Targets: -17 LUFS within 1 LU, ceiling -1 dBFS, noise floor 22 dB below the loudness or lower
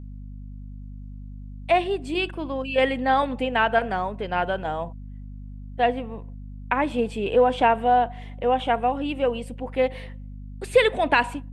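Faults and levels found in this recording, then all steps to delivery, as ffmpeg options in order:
hum 50 Hz; harmonics up to 250 Hz; hum level -35 dBFS; loudness -23.5 LUFS; peak -4.5 dBFS; loudness target -17.0 LUFS
-> -af "bandreject=f=50:t=h:w=6,bandreject=f=100:t=h:w=6,bandreject=f=150:t=h:w=6,bandreject=f=200:t=h:w=6,bandreject=f=250:t=h:w=6"
-af "volume=6.5dB,alimiter=limit=-1dB:level=0:latency=1"

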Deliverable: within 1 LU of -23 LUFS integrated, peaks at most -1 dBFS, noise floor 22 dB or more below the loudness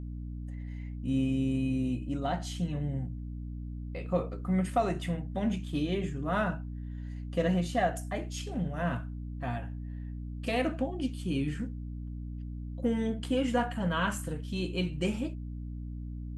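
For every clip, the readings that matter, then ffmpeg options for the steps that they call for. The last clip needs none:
hum 60 Hz; harmonics up to 300 Hz; hum level -36 dBFS; loudness -33.0 LUFS; peak -16.0 dBFS; loudness target -23.0 LUFS
-> -af "bandreject=f=60:t=h:w=4,bandreject=f=120:t=h:w=4,bandreject=f=180:t=h:w=4,bandreject=f=240:t=h:w=4,bandreject=f=300:t=h:w=4"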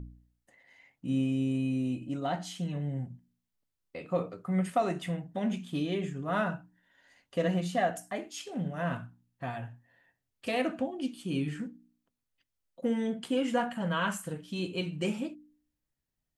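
hum none; loudness -33.0 LUFS; peak -16.5 dBFS; loudness target -23.0 LUFS
-> -af "volume=10dB"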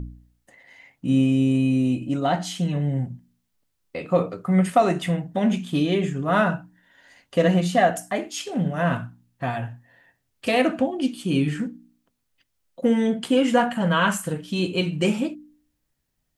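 loudness -23.0 LUFS; peak -6.5 dBFS; noise floor -75 dBFS

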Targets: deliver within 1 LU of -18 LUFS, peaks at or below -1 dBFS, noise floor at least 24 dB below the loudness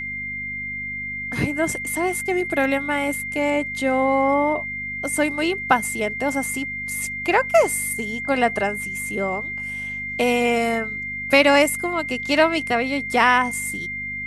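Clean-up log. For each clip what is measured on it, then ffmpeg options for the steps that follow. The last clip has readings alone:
hum 50 Hz; harmonics up to 250 Hz; hum level -38 dBFS; steady tone 2100 Hz; tone level -27 dBFS; loudness -21.5 LUFS; peak -2.5 dBFS; loudness target -18.0 LUFS
-> -af "bandreject=f=50:t=h:w=4,bandreject=f=100:t=h:w=4,bandreject=f=150:t=h:w=4,bandreject=f=200:t=h:w=4,bandreject=f=250:t=h:w=4"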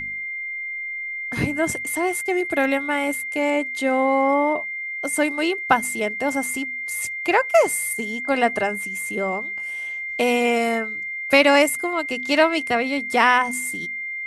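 hum none; steady tone 2100 Hz; tone level -27 dBFS
-> -af "bandreject=f=2.1k:w=30"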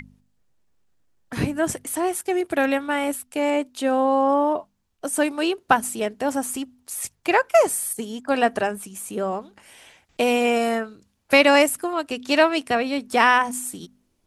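steady tone none; loudness -22.0 LUFS; peak -2.5 dBFS; loudness target -18.0 LUFS
-> -af "volume=4dB,alimiter=limit=-1dB:level=0:latency=1"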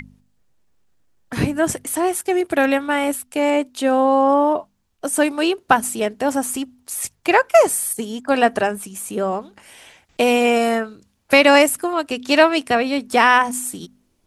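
loudness -18.0 LUFS; peak -1.0 dBFS; noise floor -65 dBFS

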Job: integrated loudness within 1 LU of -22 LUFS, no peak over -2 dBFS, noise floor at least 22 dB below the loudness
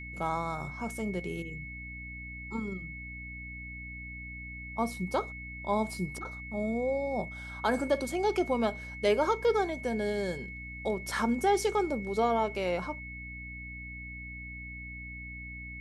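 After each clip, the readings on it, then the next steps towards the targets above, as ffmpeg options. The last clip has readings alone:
hum 60 Hz; harmonics up to 300 Hz; hum level -43 dBFS; steady tone 2200 Hz; tone level -42 dBFS; loudness -33.0 LUFS; peak -15.0 dBFS; loudness target -22.0 LUFS
-> -af "bandreject=f=60:t=h:w=6,bandreject=f=120:t=h:w=6,bandreject=f=180:t=h:w=6,bandreject=f=240:t=h:w=6,bandreject=f=300:t=h:w=6"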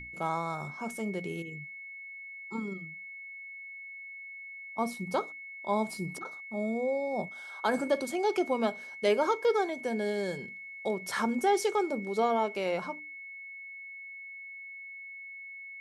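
hum none; steady tone 2200 Hz; tone level -42 dBFS
-> -af "bandreject=f=2.2k:w=30"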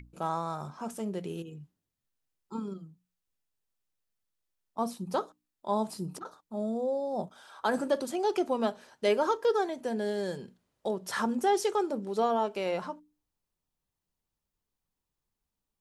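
steady tone none; loudness -32.0 LUFS; peak -15.5 dBFS; loudness target -22.0 LUFS
-> -af "volume=10dB"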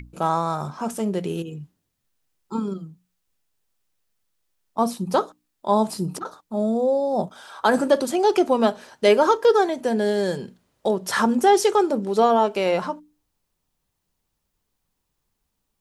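loudness -22.0 LUFS; peak -5.5 dBFS; noise floor -77 dBFS

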